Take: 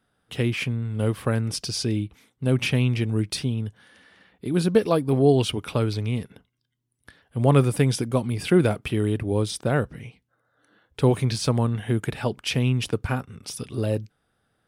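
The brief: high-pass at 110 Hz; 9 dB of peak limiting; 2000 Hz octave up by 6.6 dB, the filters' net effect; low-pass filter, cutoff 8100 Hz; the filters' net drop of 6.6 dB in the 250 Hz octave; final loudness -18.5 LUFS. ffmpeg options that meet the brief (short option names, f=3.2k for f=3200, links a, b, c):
-af "highpass=110,lowpass=8.1k,equalizer=f=250:t=o:g=-9,equalizer=f=2k:t=o:g=9,volume=9dB,alimiter=limit=-4.5dB:level=0:latency=1"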